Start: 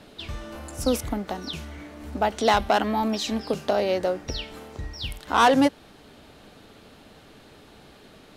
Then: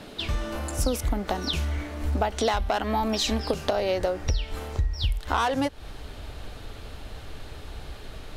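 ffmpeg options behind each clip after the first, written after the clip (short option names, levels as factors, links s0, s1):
-af "asubboost=boost=10.5:cutoff=64,acompressor=threshold=0.0447:ratio=12,volume=2"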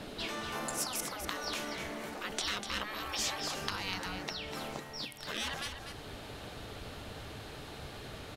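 -filter_complex "[0:a]afftfilt=real='re*lt(hypot(re,im),0.0891)':imag='im*lt(hypot(re,im),0.0891)':win_size=1024:overlap=0.75,asplit=2[s0][s1];[s1]aecho=0:1:246:0.398[s2];[s0][s2]amix=inputs=2:normalize=0,volume=0.841"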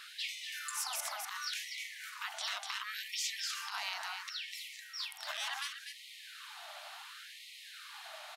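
-af "alimiter=level_in=1.26:limit=0.0631:level=0:latency=1:release=74,volume=0.794,afftfilt=real='re*gte(b*sr/1024,570*pow(1900/570,0.5+0.5*sin(2*PI*0.7*pts/sr)))':imag='im*gte(b*sr/1024,570*pow(1900/570,0.5+0.5*sin(2*PI*0.7*pts/sr)))':win_size=1024:overlap=0.75,volume=1.12"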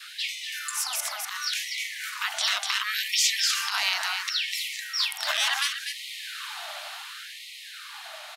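-af "adynamicequalizer=threshold=0.00141:dfrequency=850:dqfactor=1.1:tfrequency=850:tqfactor=1.1:attack=5:release=100:ratio=0.375:range=3.5:mode=cutabove:tftype=bell,dynaudnorm=f=230:g=17:m=2,volume=2.66"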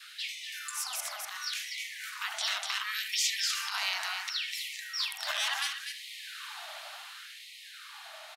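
-filter_complex "[0:a]asplit=2[s0][s1];[s1]adelay=75,lowpass=f=1100:p=1,volume=0.668,asplit=2[s2][s3];[s3]adelay=75,lowpass=f=1100:p=1,volume=0.3,asplit=2[s4][s5];[s5]adelay=75,lowpass=f=1100:p=1,volume=0.3,asplit=2[s6][s7];[s7]adelay=75,lowpass=f=1100:p=1,volume=0.3[s8];[s0][s2][s4][s6][s8]amix=inputs=5:normalize=0,volume=0.473"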